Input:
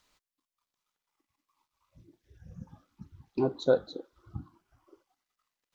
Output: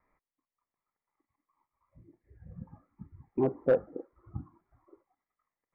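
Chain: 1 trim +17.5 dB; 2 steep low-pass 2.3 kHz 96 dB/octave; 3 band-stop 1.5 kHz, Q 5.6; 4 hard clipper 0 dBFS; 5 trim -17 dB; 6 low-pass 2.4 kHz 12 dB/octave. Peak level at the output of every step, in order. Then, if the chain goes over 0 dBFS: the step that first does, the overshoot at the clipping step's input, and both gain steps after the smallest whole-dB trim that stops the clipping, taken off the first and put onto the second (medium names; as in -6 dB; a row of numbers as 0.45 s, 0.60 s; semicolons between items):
+6.0 dBFS, +6.5 dBFS, +6.0 dBFS, 0.0 dBFS, -17.0 dBFS, -16.5 dBFS; step 1, 6.0 dB; step 1 +11.5 dB, step 5 -11 dB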